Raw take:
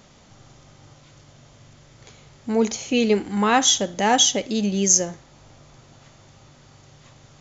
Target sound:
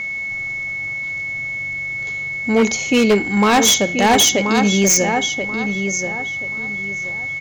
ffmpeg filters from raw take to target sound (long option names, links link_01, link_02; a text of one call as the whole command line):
ffmpeg -i in.wav -filter_complex "[0:a]asplit=2[link_01][link_02];[link_02]adelay=1031,lowpass=frequency=3000:poles=1,volume=-7.5dB,asplit=2[link_03][link_04];[link_04]adelay=1031,lowpass=frequency=3000:poles=1,volume=0.27,asplit=2[link_05][link_06];[link_06]adelay=1031,lowpass=frequency=3000:poles=1,volume=0.27[link_07];[link_03][link_05][link_07]amix=inputs=3:normalize=0[link_08];[link_01][link_08]amix=inputs=2:normalize=0,aeval=exprs='val(0)+0.0355*sin(2*PI*2200*n/s)':channel_layout=same,acontrast=65,aeval=exprs='0.422*(abs(mod(val(0)/0.422+3,4)-2)-1)':channel_layout=same" out.wav